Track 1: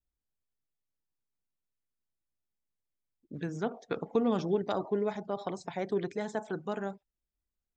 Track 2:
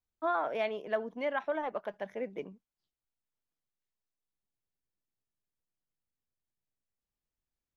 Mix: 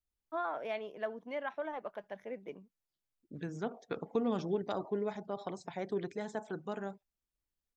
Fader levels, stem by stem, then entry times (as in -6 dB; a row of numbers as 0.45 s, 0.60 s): -4.5 dB, -5.5 dB; 0.00 s, 0.10 s